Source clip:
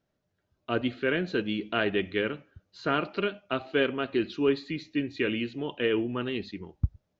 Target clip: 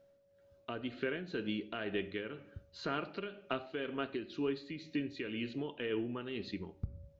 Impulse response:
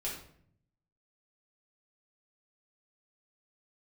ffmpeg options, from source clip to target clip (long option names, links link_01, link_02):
-filter_complex "[0:a]acompressor=threshold=-40dB:ratio=3,asplit=2[link_01][link_02];[1:a]atrim=start_sample=2205[link_03];[link_02][link_03]afir=irnorm=-1:irlink=0,volume=-13.5dB[link_04];[link_01][link_04]amix=inputs=2:normalize=0,aeval=exprs='val(0)+0.000562*sin(2*PI*560*n/s)':channel_layout=same,tremolo=f=2:d=0.49,volume=2.5dB"